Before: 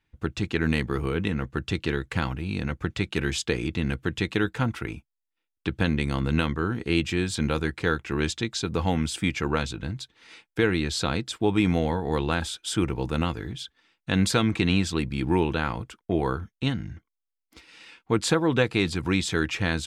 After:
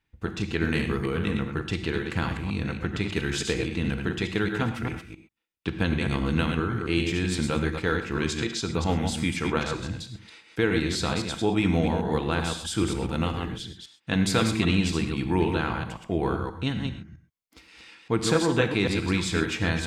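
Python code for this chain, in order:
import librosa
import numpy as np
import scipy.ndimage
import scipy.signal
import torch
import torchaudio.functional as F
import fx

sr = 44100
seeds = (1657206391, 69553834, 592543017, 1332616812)

y = fx.reverse_delay(x, sr, ms=132, wet_db=-5)
y = fx.rev_gated(y, sr, seeds[0], gate_ms=150, shape='flat', drr_db=8.0)
y = F.gain(torch.from_numpy(y), -2.0).numpy()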